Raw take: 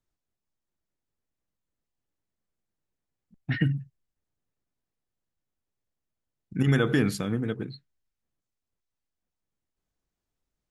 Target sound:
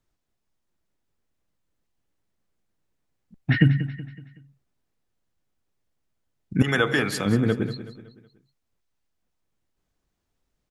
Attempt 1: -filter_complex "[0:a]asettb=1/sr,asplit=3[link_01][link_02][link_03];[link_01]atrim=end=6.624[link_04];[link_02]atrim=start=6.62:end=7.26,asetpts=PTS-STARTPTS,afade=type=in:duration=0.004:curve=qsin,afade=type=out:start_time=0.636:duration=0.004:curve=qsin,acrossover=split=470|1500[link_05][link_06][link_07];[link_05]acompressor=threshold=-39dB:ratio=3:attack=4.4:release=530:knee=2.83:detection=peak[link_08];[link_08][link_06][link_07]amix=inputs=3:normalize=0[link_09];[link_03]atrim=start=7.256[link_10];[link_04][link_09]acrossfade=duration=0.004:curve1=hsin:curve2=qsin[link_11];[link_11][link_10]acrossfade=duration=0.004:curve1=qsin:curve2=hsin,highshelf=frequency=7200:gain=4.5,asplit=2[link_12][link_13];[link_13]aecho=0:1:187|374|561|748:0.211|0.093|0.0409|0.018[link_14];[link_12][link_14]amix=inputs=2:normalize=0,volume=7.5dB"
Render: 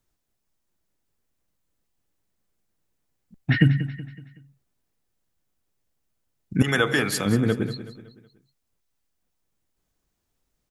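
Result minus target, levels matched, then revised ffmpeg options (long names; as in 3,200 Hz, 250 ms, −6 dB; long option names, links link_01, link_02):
8,000 Hz band +5.0 dB
-filter_complex "[0:a]asettb=1/sr,asplit=3[link_01][link_02][link_03];[link_01]atrim=end=6.624[link_04];[link_02]atrim=start=6.62:end=7.26,asetpts=PTS-STARTPTS,afade=type=in:duration=0.004:curve=qsin,afade=type=out:start_time=0.636:duration=0.004:curve=qsin,acrossover=split=470|1500[link_05][link_06][link_07];[link_05]acompressor=threshold=-39dB:ratio=3:attack=4.4:release=530:knee=2.83:detection=peak[link_08];[link_08][link_06][link_07]amix=inputs=3:normalize=0[link_09];[link_03]atrim=start=7.256[link_10];[link_04][link_09]acrossfade=duration=0.004:curve1=hsin:curve2=qsin[link_11];[link_11][link_10]acrossfade=duration=0.004:curve1=qsin:curve2=hsin,highshelf=frequency=7200:gain=-5,asplit=2[link_12][link_13];[link_13]aecho=0:1:187|374|561|748:0.211|0.093|0.0409|0.018[link_14];[link_12][link_14]amix=inputs=2:normalize=0,volume=7.5dB"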